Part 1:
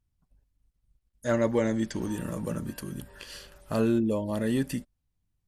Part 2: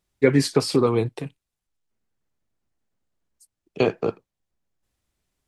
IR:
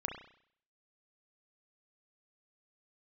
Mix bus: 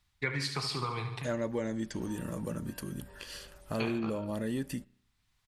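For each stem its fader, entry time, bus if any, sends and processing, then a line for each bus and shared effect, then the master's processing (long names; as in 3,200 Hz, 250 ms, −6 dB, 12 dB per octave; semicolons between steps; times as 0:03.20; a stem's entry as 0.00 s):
−1.5 dB, 0.00 s, send −23.5 dB, no echo send, no processing
−2.5 dB, 0.00 s, send −14.5 dB, echo send −15 dB, graphic EQ with 10 bands 125 Hz +5 dB, 250 Hz −9 dB, 500 Hz −10 dB, 1,000 Hz +8 dB, 2,000 Hz +6 dB, 4,000 Hz +8 dB; automatic ducking −9 dB, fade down 0.35 s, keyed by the first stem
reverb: on, RT60 0.60 s, pre-delay 32 ms
echo: repeating echo 72 ms, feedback 51%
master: downward compressor 2 to 1, threshold −35 dBFS, peak gain reduction 8.5 dB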